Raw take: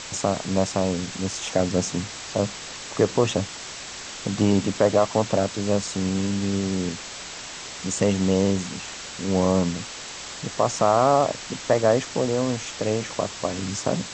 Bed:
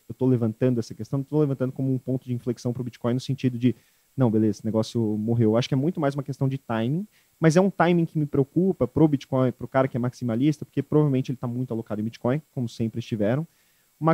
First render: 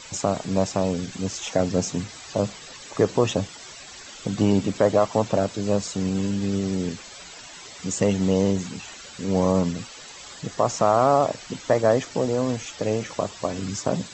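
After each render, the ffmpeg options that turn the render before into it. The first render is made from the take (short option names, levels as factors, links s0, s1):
-af "afftdn=nr=12:nf=-37"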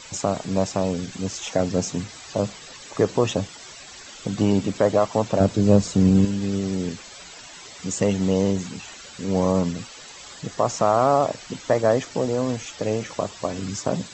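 -filter_complex "[0:a]asettb=1/sr,asplit=3[s0][s1][s2];[s0]atrim=end=5.404[s3];[s1]atrim=start=5.4:end=6.25,asetpts=PTS-STARTPTS,afade=t=in:d=0.004:c=qsin,afade=t=out:st=0.846:d=0.004:c=qsin,lowshelf=f=420:g=11[s4];[s2]atrim=start=6.246[s5];[s3][s4]acrossfade=d=0.004:c1=hsin:c2=qsin[s6];[s6][s5]acrossfade=d=0.004:c1=qsin:c2=hsin"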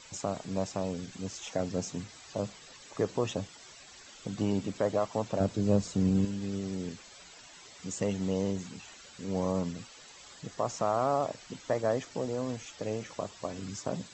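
-af "volume=0.316"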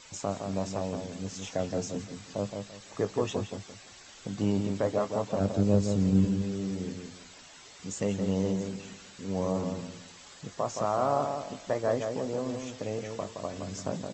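-filter_complex "[0:a]asplit=2[s0][s1];[s1]adelay=20,volume=0.251[s2];[s0][s2]amix=inputs=2:normalize=0,asplit=2[s3][s4];[s4]adelay=169,lowpass=f=2300:p=1,volume=0.531,asplit=2[s5][s6];[s6]adelay=169,lowpass=f=2300:p=1,volume=0.28,asplit=2[s7][s8];[s8]adelay=169,lowpass=f=2300:p=1,volume=0.28,asplit=2[s9][s10];[s10]adelay=169,lowpass=f=2300:p=1,volume=0.28[s11];[s5][s7][s9][s11]amix=inputs=4:normalize=0[s12];[s3][s12]amix=inputs=2:normalize=0"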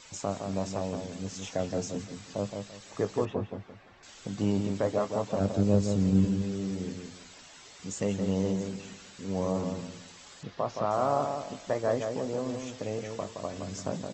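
-filter_complex "[0:a]asettb=1/sr,asplit=3[s0][s1][s2];[s0]atrim=end=3.254[s3];[s1]atrim=start=3.25:end=4.03,asetpts=PTS-STARTPTS,afade=t=in:d=0.004:c=qsin,afade=t=out:st=0.776:d=0.004:c=qsin,lowpass=1800[s4];[s2]atrim=start=4.026[s5];[s3][s4]acrossfade=d=0.004:c1=hsin:c2=qsin[s6];[s6][s5]acrossfade=d=0.004:c1=qsin:c2=hsin,asettb=1/sr,asplit=3[s7][s8][s9];[s7]atrim=end=10.434[s10];[s8]atrim=start=10.43:end=10.91,asetpts=PTS-STARTPTS,afade=t=in:d=0.004:c=qsin,afade=t=out:st=0.476:d=0.004:c=qsin,lowpass=f=4700:w=0.5412,lowpass=f=4700:w=1.3066[s11];[s9]atrim=start=10.906[s12];[s10][s11]acrossfade=d=0.004:c1=hsin:c2=qsin[s13];[s13][s12]acrossfade=d=0.004:c1=qsin:c2=hsin"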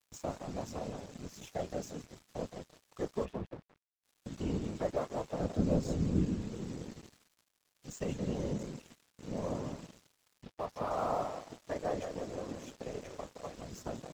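-af "afftfilt=real='hypot(re,im)*cos(2*PI*random(0))':imag='hypot(re,im)*sin(2*PI*random(1))':win_size=512:overlap=0.75,aeval=exprs='sgn(val(0))*max(abs(val(0))-0.00282,0)':c=same"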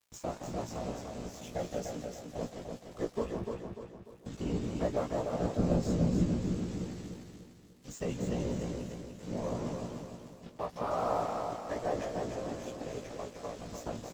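-filter_complex "[0:a]asplit=2[s0][s1];[s1]adelay=17,volume=0.596[s2];[s0][s2]amix=inputs=2:normalize=0,aecho=1:1:296|592|888|1184|1480:0.562|0.236|0.0992|0.0417|0.0175"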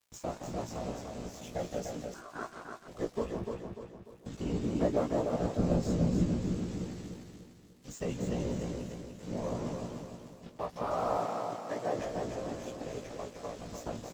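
-filter_complex "[0:a]asettb=1/sr,asplit=3[s0][s1][s2];[s0]atrim=end=2.144[s3];[s1]atrim=start=2.14:end=2.88,asetpts=PTS-STARTPTS,afade=t=in:d=0.004:c=qsin,afade=t=out:st=0.736:d=0.004:c=qsin,aeval=exprs='val(0)*sin(2*PI*880*n/s)':c=same[s4];[s2]atrim=start=2.876[s5];[s3][s4]acrossfade=d=0.004:c1=hsin:c2=qsin[s6];[s6][s5]acrossfade=d=0.004:c1=qsin:c2=hsin,asettb=1/sr,asplit=3[s7][s8][s9];[s7]atrim=end=4.644[s10];[s8]atrim=start=4.64:end=5.36,asetpts=PTS-STARTPTS,afade=t=in:d=0.004:c=qsin,afade=t=out:st=0.716:d=0.004:c=qsin,equalizer=f=290:t=o:w=1.5:g=6[s11];[s9]atrim=start=5.356[s12];[s10][s11]acrossfade=d=0.004:c1=hsin:c2=qsin[s13];[s13][s12]acrossfade=d=0.004:c1=qsin:c2=hsin,asettb=1/sr,asplit=3[s14][s15][s16];[s14]atrim=end=11.184[s17];[s15]atrim=start=11.18:end=11.99,asetpts=PTS-STARTPTS,afade=t=in:d=0.004:c=qsin,afade=t=out:st=0.806:d=0.004:c=qsin,highpass=f=110:w=0.5412,highpass=f=110:w=1.3066[s18];[s16]atrim=start=11.986[s19];[s17][s18]acrossfade=d=0.004:c1=hsin:c2=qsin[s20];[s20][s19]acrossfade=d=0.004:c1=qsin:c2=hsin"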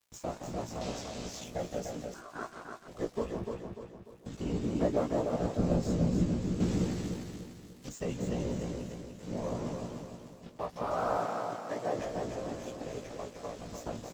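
-filter_complex "[0:a]asettb=1/sr,asplit=3[s0][s1][s2];[s0]atrim=end=0.814[s3];[s1]atrim=start=0.81:end=1.44,asetpts=PTS-STARTPTS,afade=t=in:d=0.004:c=qsin,afade=t=out:st=0.626:d=0.004:c=qsin,equalizer=f=4200:w=0.59:g=10[s4];[s2]atrim=start=1.436[s5];[s3][s4]acrossfade=d=0.004:c1=hsin:c2=qsin[s6];[s6][s5]acrossfade=d=0.004:c1=qsin:c2=hsin,asettb=1/sr,asplit=3[s7][s8][s9];[s7]atrim=end=6.604[s10];[s8]atrim=start=6.6:end=7.89,asetpts=PTS-STARTPTS,afade=t=in:d=0.004:c=qsin,afade=t=out:st=1.286:d=0.004:c=qsin,acontrast=87[s11];[s9]atrim=start=7.886[s12];[s10][s11]acrossfade=d=0.004:c1=hsin:c2=qsin[s13];[s13][s12]acrossfade=d=0.004:c1=qsin:c2=hsin,asettb=1/sr,asplit=3[s14][s15][s16];[s14]atrim=end=10.964[s17];[s15]atrim=start=10.96:end=11.69,asetpts=PTS-STARTPTS,afade=t=in:d=0.004:c=qsin,afade=t=out:st=0.726:d=0.004:c=qsin,equalizer=f=1500:w=6.6:g=9.5[s18];[s16]atrim=start=11.686[s19];[s17][s18]acrossfade=d=0.004:c1=hsin:c2=qsin[s20];[s20][s19]acrossfade=d=0.004:c1=qsin:c2=hsin"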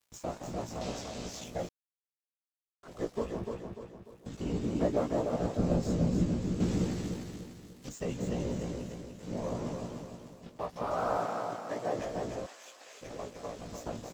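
-filter_complex "[0:a]asplit=3[s0][s1][s2];[s0]afade=t=out:st=12.45:d=0.02[s3];[s1]highpass=1300,afade=t=in:st=12.45:d=0.02,afade=t=out:st=13.01:d=0.02[s4];[s2]afade=t=in:st=13.01:d=0.02[s5];[s3][s4][s5]amix=inputs=3:normalize=0,asplit=3[s6][s7][s8];[s6]atrim=end=1.69,asetpts=PTS-STARTPTS,afade=t=out:st=1.686:d=0.004:c=hsin[s9];[s7]atrim=start=1.69:end=2.83,asetpts=PTS-STARTPTS,volume=0[s10];[s8]atrim=start=2.83,asetpts=PTS-STARTPTS,afade=t=in:d=0.004:c=hsin[s11];[s9][s10][s11]concat=n=3:v=0:a=1"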